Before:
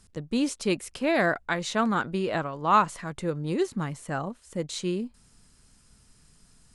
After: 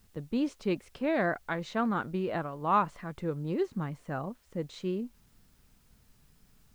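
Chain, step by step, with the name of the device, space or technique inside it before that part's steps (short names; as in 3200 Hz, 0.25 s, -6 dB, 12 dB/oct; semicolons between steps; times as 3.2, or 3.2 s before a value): cassette deck with a dirty head (tape spacing loss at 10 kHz 22 dB; wow and flutter; white noise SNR 37 dB); gain -3 dB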